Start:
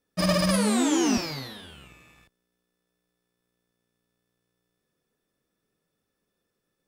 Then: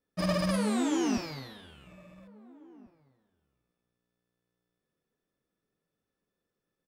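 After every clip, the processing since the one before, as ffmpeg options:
-filter_complex "[0:a]highshelf=f=3600:g=-7,asplit=2[s0][s1];[s1]adelay=1691,volume=0.0631,highshelf=f=4000:g=-38[s2];[s0][s2]amix=inputs=2:normalize=0,volume=0.562"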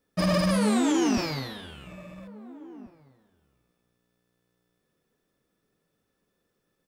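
-af "alimiter=level_in=1.12:limit=0.0631:level=0:latency=1:release=31,volume=0.891,volume=2.82"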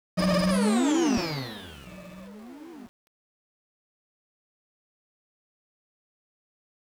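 -af "aeval=exprs='val(0)*gte(abs(val(0)),0.00398)':c=same"

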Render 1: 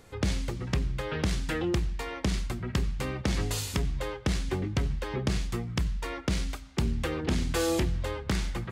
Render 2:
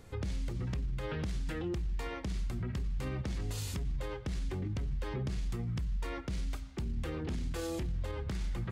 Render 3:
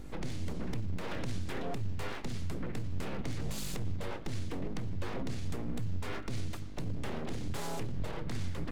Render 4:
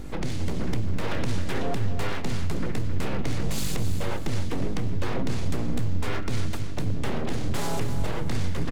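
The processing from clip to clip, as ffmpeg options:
-af "lowshelf=f=230:g=8,alimiter=level_in=1.12:limit=0.0631:level=0:latency=1:release=51,volume=0.891,volume=0.631"
-af "aeval=exprs='val(0)+0.00631*(sin(2*PI*50*n/s)+sin(2*PI*2*50*n/s)/2+sin(2*PI*3*50*n/s)/3+sin(2*PI*4*50*n/s)/4+sin(2*PI*5*50*n/s)/5)':c=same,aeval=exprs='abs(val(0))':c=same,volume=1.26"
-af "aecho=1:1:266|532|798|1064:0.335|0.137|0.0563|0.0231,volume=2.66"

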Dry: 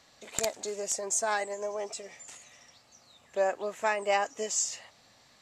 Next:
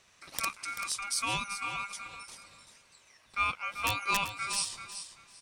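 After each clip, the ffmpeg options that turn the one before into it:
-af "aeval=exprs='val(0)*sin(2*PI*1800*n/s)':c=same,aeval=exprs='(mod(5.96*val(0)+1,2)-1)/5.96':c=same,aecho=1:1:387|774|1161:0.316|0.0664|0.0139"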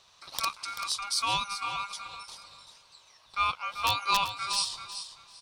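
-af "equalizer=f=250:t=o:w=1:g=-6,equalizer=f=1000:t=o:w=1:g=8,equalizer=f=2000:t=o:w=1:g=-8,equalizer=f=4000:t=o:w=1:g=11,equalizer=f=8000:t=o:w=1:g=-4"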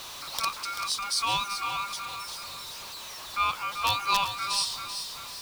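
-af "aeval=exprs='val(0)+0.5*0.0158*sgn(val(0))':c=same"

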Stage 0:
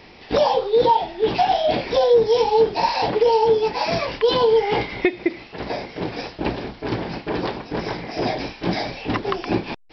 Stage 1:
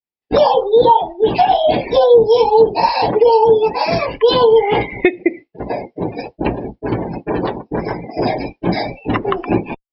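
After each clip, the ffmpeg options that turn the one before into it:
-af "agate=range=0.0224:threshold=0.0355:ratio=3:detection=peak,afftdn=nr=34:nf=-30,volume=2"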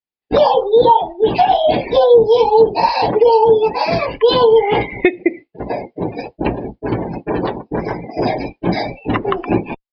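-af "aresample=11025,aresample=44100"

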